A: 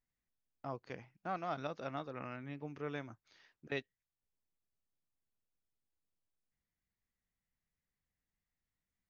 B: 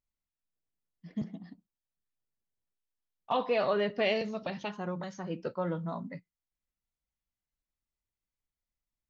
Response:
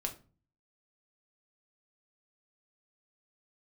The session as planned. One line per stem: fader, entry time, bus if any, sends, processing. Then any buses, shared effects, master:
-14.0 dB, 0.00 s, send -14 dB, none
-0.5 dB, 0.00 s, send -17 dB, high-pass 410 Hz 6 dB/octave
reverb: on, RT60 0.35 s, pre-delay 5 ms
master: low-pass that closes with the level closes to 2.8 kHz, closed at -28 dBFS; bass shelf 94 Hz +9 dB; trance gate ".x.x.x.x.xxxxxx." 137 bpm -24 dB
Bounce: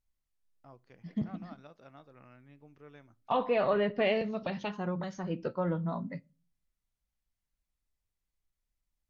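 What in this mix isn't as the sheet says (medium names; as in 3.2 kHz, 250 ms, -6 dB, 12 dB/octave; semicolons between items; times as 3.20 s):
stem B: missing high-pass 410 Hz 6 dB/octave; master: missing trance gate ".x.x.x.x.xxxxxx." 137 bpm -24 dB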